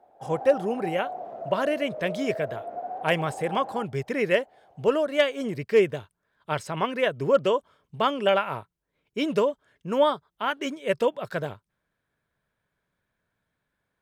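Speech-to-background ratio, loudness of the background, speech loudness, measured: 10.0 dB, -36.5 LUFS, -26.5 LUFS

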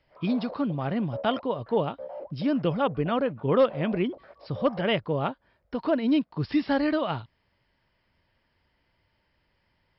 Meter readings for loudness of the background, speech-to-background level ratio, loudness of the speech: -43.5 LUFS, 16.0 dB, -27.5 LUFS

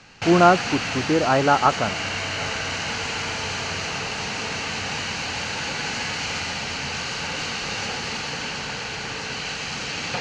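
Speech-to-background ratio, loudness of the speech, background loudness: 6.5 dB, -20.0 LUFS, -26.5 LUFS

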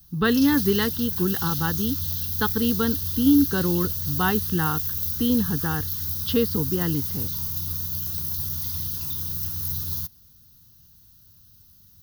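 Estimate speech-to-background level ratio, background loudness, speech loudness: 1.5 dB, -26.0 LUFS, -24.5 LUFS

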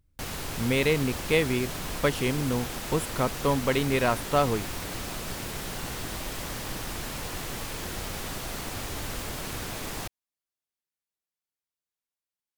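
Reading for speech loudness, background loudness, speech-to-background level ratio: -27.5 LUFS, -34.5 LUFS, 7.0 dB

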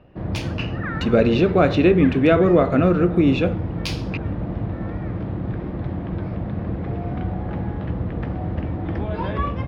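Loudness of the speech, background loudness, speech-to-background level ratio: -17.5 LUFS, -27.5 LUFS, 10.0 dB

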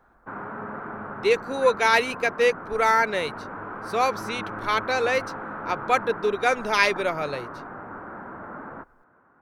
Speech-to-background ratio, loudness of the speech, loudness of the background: 12.5 dB, -23.5 LUFS, -36.0 LUFS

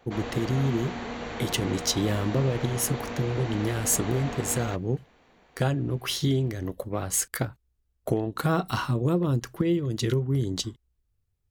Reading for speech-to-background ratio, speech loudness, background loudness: 8.0 dB, -27.5 LUFS, -35.5 LUFS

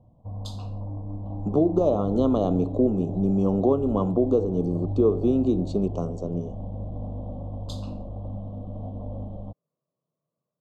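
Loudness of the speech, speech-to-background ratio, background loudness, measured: -24.0 LUFS, 10.5 dB, -34.5 LUFS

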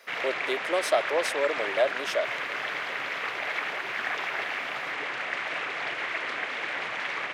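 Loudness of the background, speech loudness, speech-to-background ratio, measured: -30.5 LUFS, -29.0 LUFS, 1.5 dB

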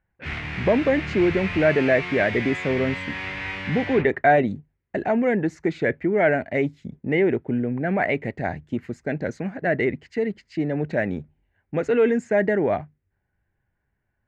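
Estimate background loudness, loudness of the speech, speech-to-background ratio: -30.0 LUFS, -23.0 LUFS, 7.0 dB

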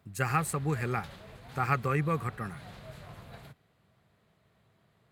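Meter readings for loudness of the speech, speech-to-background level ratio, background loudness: -31.5 LUFS, 17.5 dB, -49.0 LUFS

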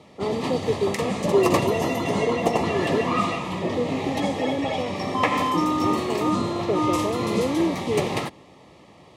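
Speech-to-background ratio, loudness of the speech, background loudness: -3.0 dB, -28.5 LUFS, -25.5 LUFS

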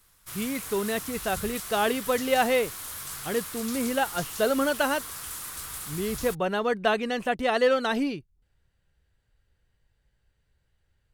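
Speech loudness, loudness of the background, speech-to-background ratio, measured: -27.0 LUFS, -35.5 LUFS, 8.5 dB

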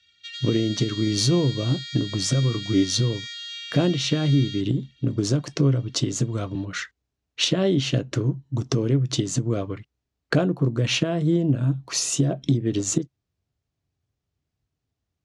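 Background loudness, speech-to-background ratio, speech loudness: -33.5 LUFS, 10.0 dB, -23.5 LUFS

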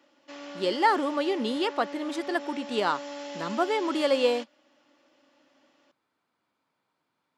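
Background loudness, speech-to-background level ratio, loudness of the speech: -39.5 LUFS, 12.0 dB, -27.5 LUFS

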